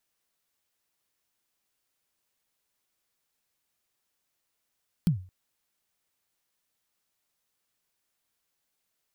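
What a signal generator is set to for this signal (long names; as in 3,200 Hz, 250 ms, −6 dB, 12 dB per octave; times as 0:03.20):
synth kick length 0.22 s, from 190 Hz, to 92 Hz, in 109 ms, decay 0.37 s, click on, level −16 dB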